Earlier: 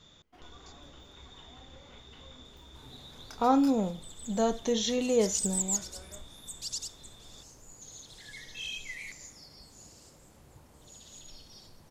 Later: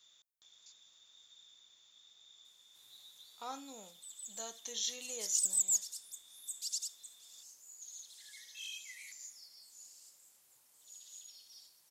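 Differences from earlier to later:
first sound: muted
master: add first difference

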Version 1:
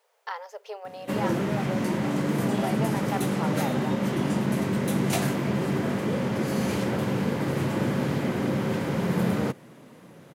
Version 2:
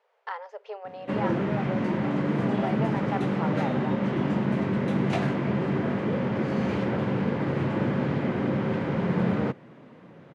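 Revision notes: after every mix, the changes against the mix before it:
master: add low-pass filter 2,700 Hz 12 dB per octave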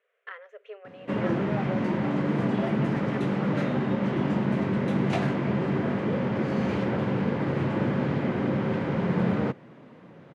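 speech: add phaser with its sweep stopped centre 2,100 Hz, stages 4

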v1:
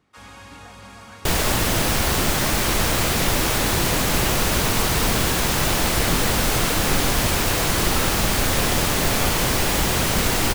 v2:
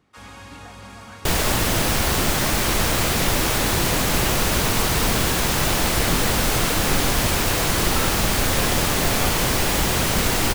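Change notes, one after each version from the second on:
reverb: on, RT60 1.6 s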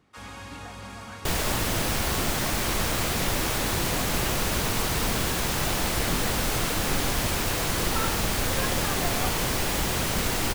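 second sound −6.0 dB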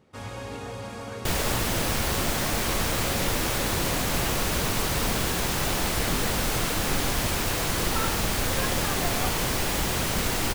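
first sound: remove Chebyshev high-pass filter 1,100 Hz, order 2

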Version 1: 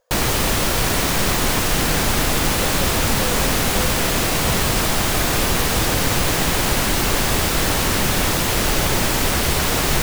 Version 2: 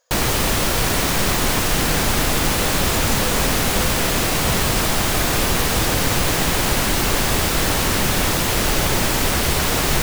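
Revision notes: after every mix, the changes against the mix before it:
speech: add spectral tilt +4.5 dB per octave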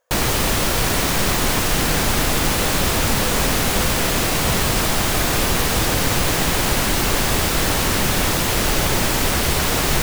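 speech: add moving average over 10 samples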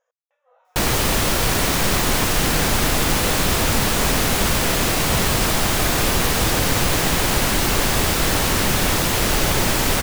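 speech −6.0 dB
background: entry +0.65 s

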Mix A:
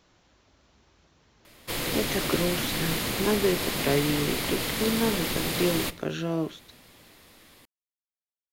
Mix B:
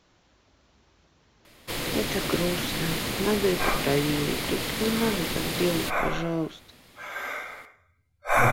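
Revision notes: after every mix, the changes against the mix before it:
second sound: unmuted
master: add high-shelf EQ 11,000 Hz −5.5 dB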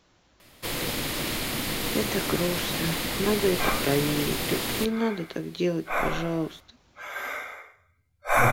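first sound: entry −1.05 s
master: add high-shelf EQ 11,000 Hz +5.5 dB

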